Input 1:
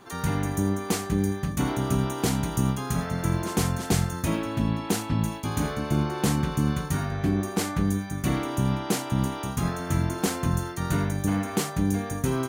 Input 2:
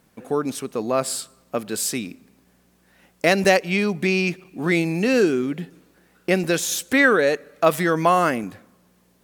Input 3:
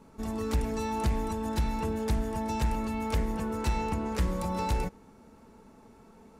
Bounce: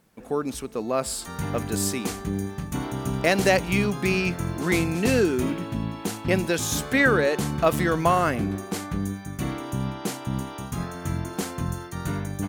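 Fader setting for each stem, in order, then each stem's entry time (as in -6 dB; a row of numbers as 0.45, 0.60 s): -3.5, -3.5, -18.0 dB; 1.15, 0.00, 0.00 s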